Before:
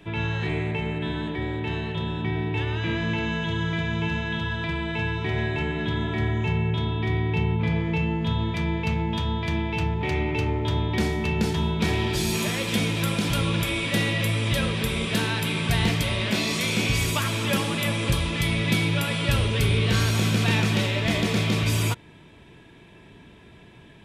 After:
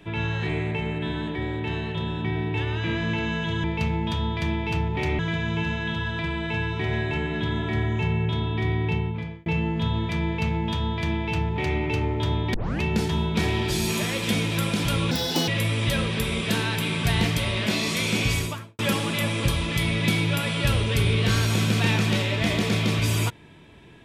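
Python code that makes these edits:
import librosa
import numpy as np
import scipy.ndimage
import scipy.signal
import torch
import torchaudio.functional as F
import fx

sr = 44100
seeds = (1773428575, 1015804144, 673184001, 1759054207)

y = fx.studio_fade_out(x, sr, start_s=16.94, length_s=0.49)
y = fx.edit(y, sr, fx.fade_out_span(start_s=7.32, length_s=0.59),
    fx.duplicate(start_s=8.7, length_s=1.55, to_s=3.64),
    fx.tape_start(start_s=10.99, length_s=0.27),
    fx.speed_span(start_s=13.56, length_s=0.56, speed=1.52), tone=tone)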